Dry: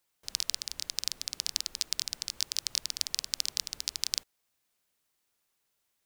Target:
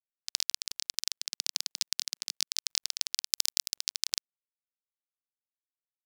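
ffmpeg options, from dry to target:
-filter_complex "[0:a]acrusher=bits=6:mix=0:aa=0.5,asettb=1/sr,asplit=3[a][b][c];[a]atrim=end=1.214[d];[b]atrim=start=1.21:end=2.48,asetpts=PTS-STARTPTS,afade=t=in:d=0.004:c=qsin,afade=t=out:st=1.266:d=0.004:c=qsin,highpass=f=180:w=0.5412,highpass=f=180:w=1.3066[e];[c]atrim=start=2.476[f];[d][e]acrossfade=d=0.004:c1=hsin:c2=qsin[g];[g][f]acrossfade=d=0.004:c1=qsin:c2=hsin,asettb=1/sr,asplit=3[h][i][j];[h]atrim=end=3.264[k];[i]atrim=start=3.26:end=3.75,asetpts=PTS-STARTPTS,afade=t=in:d=0.004:c=qsin,afade=t=out:st=0.486:d=0.004:c=qsin,highshelf=f=7.2k:g=10[l];[j]atrim=start=3.746[m];[k][l]acrossfade=d=0.004:c1=hsin:c2=qsin[n];[n][m]acrossfade=d=0.004:c1=qsin:c2=hsin"

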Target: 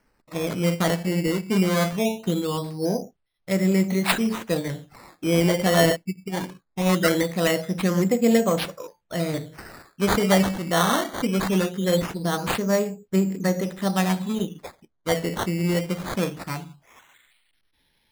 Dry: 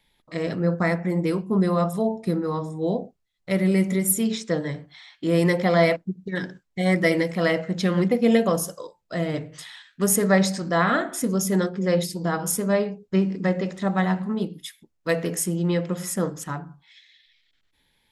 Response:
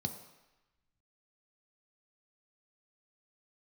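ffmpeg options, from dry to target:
-af "acrusher=samples=12:mix=1:aa=0.000001:lfo=1:lforange=12:lforate=0.21"

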